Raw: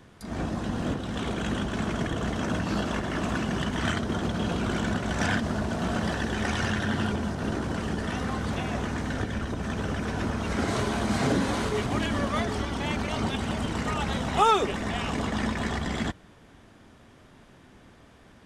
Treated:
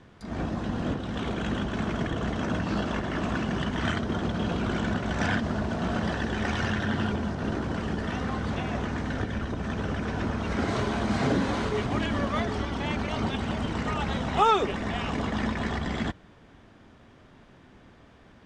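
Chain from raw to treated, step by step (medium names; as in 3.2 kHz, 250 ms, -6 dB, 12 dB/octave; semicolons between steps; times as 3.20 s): distance through air 83 m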